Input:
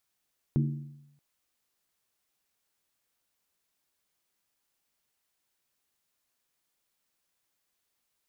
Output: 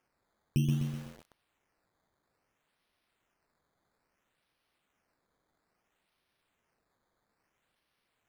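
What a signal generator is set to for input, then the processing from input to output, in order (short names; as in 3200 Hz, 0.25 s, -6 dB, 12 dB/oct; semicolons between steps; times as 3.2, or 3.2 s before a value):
skin hit, lowest mode 144 Hz, decay 0.87 s, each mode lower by 5.5 dB, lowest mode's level -21 dB
bell 710 Hz -12.5 dB 1.1 oct; decimation with a swept rate 11×, swing 100% 0.6 Hz; lo-fi delay 0.126 s, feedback 55%, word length 8-bit, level -4 dB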